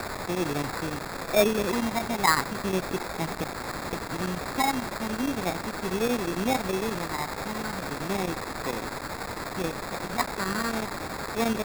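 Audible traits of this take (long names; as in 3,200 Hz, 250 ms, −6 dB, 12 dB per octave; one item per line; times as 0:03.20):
phaser sweep stages 12, 0.37 Hz, lowest notch 490–2,400 Hz
a quantiser's noise floor 6 bits, dither triangular
chopped level 11 Hz, depth 65%, duty 85%
aliases and images of a low sample rate 3,000 Hz, jitter 0%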